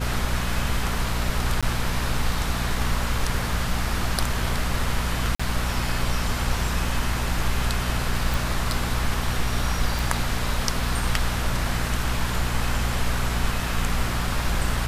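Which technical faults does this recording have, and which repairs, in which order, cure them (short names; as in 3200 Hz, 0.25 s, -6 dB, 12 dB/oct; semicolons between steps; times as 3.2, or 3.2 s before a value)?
hum 60 Hz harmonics 4 -28 dBFS
1.61–1.63 gap 16 ms
5.35–5.39 gap 45 ms
8.34 pop
9.99 pop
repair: de-click; de-hum 60 Hz, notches 4; interpolate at 1.61, 16 ms; interpolate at 5.35, 45 ms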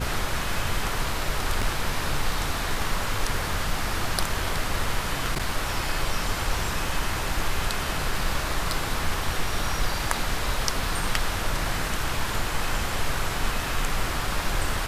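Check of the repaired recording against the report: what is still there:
none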